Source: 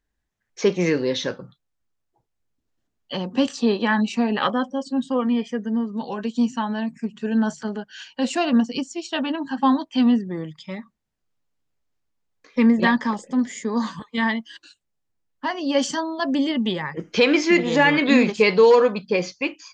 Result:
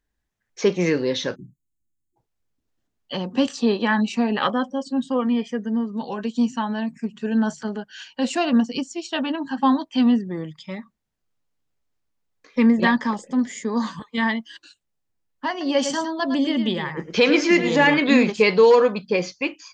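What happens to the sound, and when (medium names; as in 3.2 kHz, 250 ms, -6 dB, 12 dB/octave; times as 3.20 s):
1.35–2.16 s: spectral selection erased 370–6300 Hz
15.50–17.94 s: delay 108 ms -9 dB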